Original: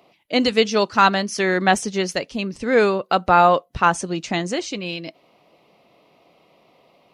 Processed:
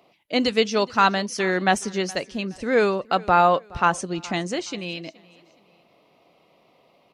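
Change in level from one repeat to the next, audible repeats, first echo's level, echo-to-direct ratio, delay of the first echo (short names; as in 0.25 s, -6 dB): -9.5 dB, 2, -22.5 dB, -22.0 dB, 0.42 s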